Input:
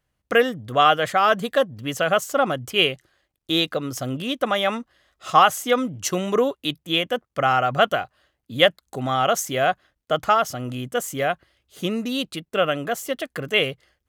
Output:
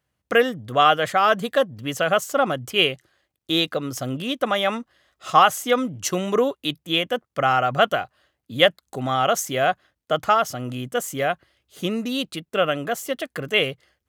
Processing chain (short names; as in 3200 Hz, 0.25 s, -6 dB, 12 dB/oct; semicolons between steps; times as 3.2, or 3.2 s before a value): HPF 65 Hz